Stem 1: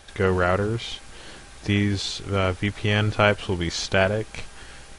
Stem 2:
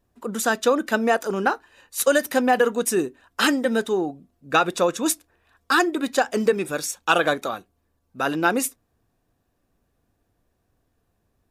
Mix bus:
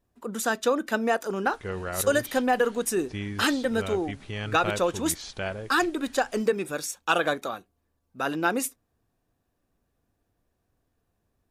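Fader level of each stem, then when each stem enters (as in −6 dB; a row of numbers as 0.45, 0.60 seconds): −12.0, −4.5 decibels; 1.45, 0.00 seconds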